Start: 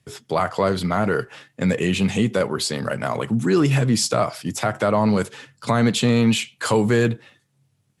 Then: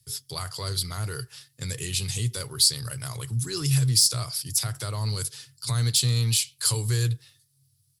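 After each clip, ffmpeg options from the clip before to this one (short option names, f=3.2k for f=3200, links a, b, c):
-af "deesser=0.4,firequalizer=gain_entry='entry(130,0);entry(190,-25);entry(380,-16);entry(620,-23);entry(1100,-15);entry(2500,-11);entry(4700,9);entry(6700,2);entry(10000,13)':delay=0.05:min_phase=1"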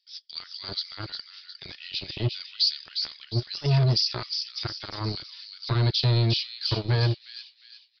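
-filter_complex "[0:a]acrossover=split=1900[a][b];[a]acrusher=bits=3:mix=0:aa=0.5[c];[b]aecho=1:1:357|714|1071|1428|1785:0.473|0.189|0.0757|0.0303|0.0121[d];[c][d]amix=inputs=2:normalize=0,aresample=11025,aresample=44100"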